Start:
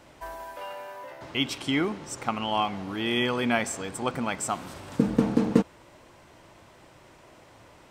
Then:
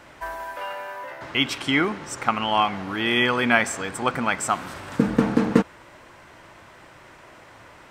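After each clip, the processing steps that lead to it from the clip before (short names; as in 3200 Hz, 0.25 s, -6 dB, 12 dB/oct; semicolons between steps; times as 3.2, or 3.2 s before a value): bell 1600 Hz +8 dB 1.4 oct; gain +2.5 dB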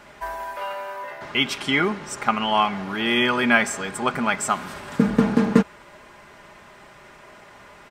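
comb 4.9 ms, depth 50%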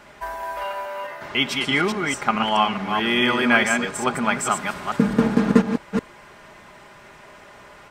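reverse delay 0.214 s, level -4.5 dB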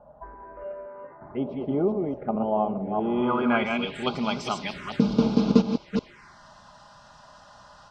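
envelope phaser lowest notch 340 Hz, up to 1800 Hz, full sweep at -19.5 dBFS; low-pass sweep 580 Hz -> 5100 Hz, 2.89–4.22; gain -2.5 dB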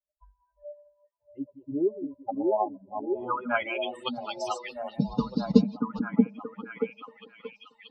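per-bin expansion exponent 3; on a send: delay with a stepping band-pass 0.631 s, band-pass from 290 Hz, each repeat 0.7 oct, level -0.5 dB; on the sum: gain +2.5 dB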